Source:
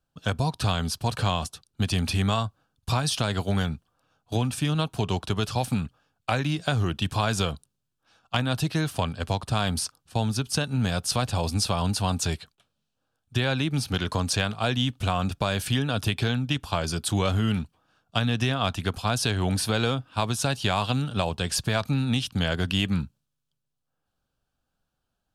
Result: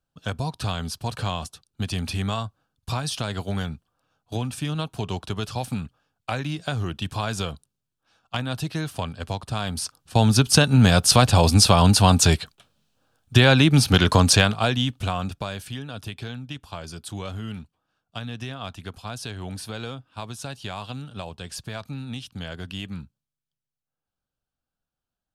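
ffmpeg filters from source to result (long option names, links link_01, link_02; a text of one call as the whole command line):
ffmpeg -i in.wav -af "volume=10dB,afade=type=in:start_time=9.76:duration=0.63:silence=0.237137,afade=type=out:start_time=14.28:duration=0.43:silence=0.421697,afade=type=out:start_time=14.71:duration=0.96:silence=0.266073" out.wav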